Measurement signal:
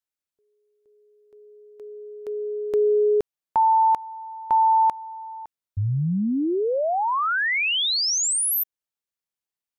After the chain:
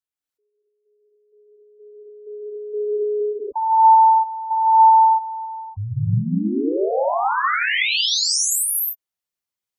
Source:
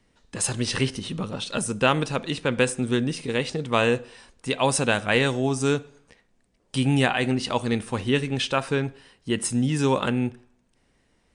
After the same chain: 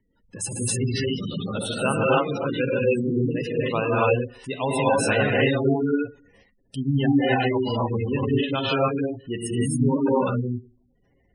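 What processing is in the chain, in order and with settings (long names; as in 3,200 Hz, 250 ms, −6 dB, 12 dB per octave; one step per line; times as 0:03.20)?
reverb whose tail is shaped and stops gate 320 ms rising, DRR −6.5 dB
gate on every frequency bin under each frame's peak −15 dB strong
level −4.5 dB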